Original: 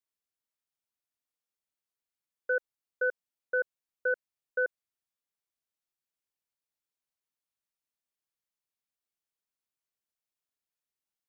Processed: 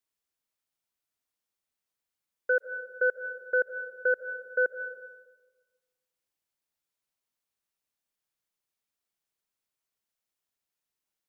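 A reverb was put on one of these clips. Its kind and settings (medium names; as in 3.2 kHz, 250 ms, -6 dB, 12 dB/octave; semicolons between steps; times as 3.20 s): algorithmic reverb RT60 1.3 s, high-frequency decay 0.45×, pre-delay 110 ms, DRR 10.5 dB; trim +3.5 dB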